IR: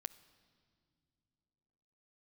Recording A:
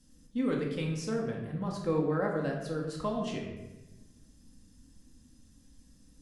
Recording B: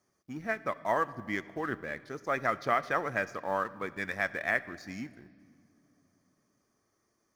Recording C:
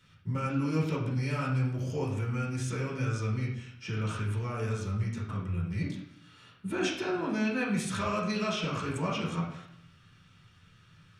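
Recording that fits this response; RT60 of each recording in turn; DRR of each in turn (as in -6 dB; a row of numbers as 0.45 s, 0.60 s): B; 1.0 s, no single decay rate, 0.70 s; -2.0 dB, 13.5 dB, -7.0 dB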